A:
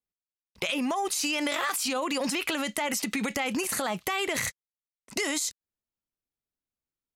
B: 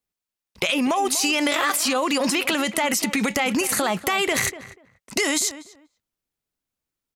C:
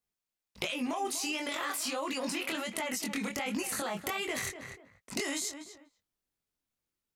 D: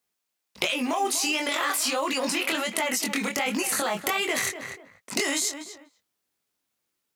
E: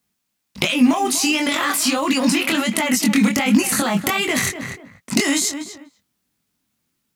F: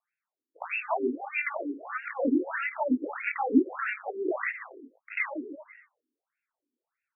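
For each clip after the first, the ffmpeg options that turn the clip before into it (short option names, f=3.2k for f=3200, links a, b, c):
-filter_complex "[0:a]asplit=2[a][b];[b]adelay=243,lowpass=f=1.6k:p=1,volume=-13.5dB,asplit=2[c][d];[d]adelay=243,lowpass=f=1.6k:p=1,volume=0.19[e];[a][c][e]amix=inputs=3:normalize=0,volume=7dB"
-af "acompressor=threshold=-29dB:ratio=6,flanger=delay=19:depth=6.3:speed=1.4"
-filter_complex "[0:a]highpass=f=290:p=1,asplit=2[a][b];[b]acrusher=bits=4:mode=log:mix=0:aa=0.000001,volume=-8dB[c];[a][c]amix=inputs=2:normalize=0,volume=6dB"
-af "lowshelf=f=310:t=q:w=1.5:g=9.5,volume=6dB"
-af "aeval=exprs='if(lt(val(0),0),0.447*val(0),val(0))':c=same,afftfilt=real='re*between(b*sr/1024,310*pow(2000/310,0.5+0.5*sin(2*PI*1.6*pts/sr))/1.41,310*pow(2000/310,0.5+0.5*sin(2*PI*1.6*pts/sr))*1.41)':imag='im*between(b*sr/1024,310*pow(2000/310,0.5+0.5*sin(2*PI*1.6*pts/sr))/1.41,310*pow(2000/310,0.5+0.5*sin(2*PI*1.6*pts/sr))*1.41)':win_size=1024:overlap=0.75"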